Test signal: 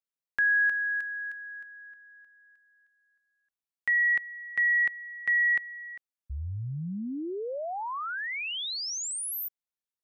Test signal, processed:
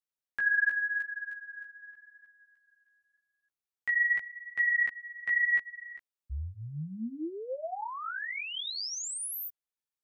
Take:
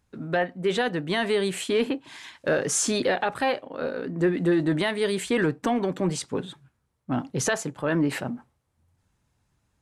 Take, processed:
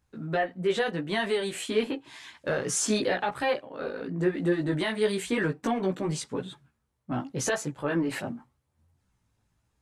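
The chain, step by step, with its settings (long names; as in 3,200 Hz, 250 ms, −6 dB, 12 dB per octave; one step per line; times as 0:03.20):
multi-voice chorus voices 2, 0.85 Hz, delay 16 ms, depth 2.7 ms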